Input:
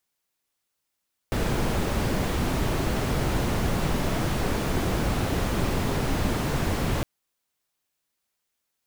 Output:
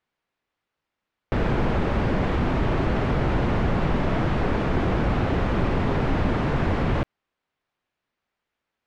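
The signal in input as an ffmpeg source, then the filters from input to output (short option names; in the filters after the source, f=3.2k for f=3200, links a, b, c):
-f lavfi -i "anoisesrc=c=brown:a=0.279:d=5.71:r=44100:seed=1"
-filter_complex "[0:a]lowpass=2.4k,asplit=2[a][b];[b]alimiter=limit=-23dB:level=0:latency=1,volume=-2dB[c];[a][c]amix=inputs=2:normalize=0"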